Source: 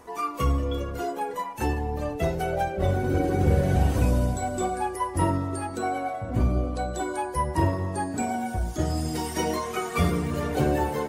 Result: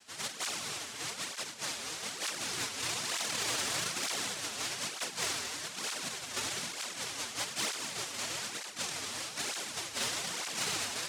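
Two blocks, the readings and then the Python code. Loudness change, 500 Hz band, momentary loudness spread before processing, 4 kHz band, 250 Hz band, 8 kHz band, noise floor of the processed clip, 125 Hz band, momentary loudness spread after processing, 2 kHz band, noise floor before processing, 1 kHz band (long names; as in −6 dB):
−8.0 dB, −17.5 dB, 7 LU, +8.0 dB, −21.0 dB, +6.0 dB, −45 dBFS, −27.0 dB, 5 LU, −1.5 dB, −35 dBFS, −14.5 dB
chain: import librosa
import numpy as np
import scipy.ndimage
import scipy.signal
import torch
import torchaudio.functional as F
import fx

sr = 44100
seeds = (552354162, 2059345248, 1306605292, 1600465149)

y = fx.noise_vocoder(x, sr, seeds[0], bands=1)
y = 10.0 ** (-16.0 / 20.0) * np.tanh(y / 10.0 ** (-16.0 / 20.0))
y = y + 10.0 ** (-11.0 / 20.0) * np.pad(y, (int(226 * sr / 1000.0), 0))[:len(y)]
y = fx.flanger_cancel(y, sr, hz=1.1, depth_ms=6.6)
y = F.gain(torch.from_numpy(y), -6.5).numpy()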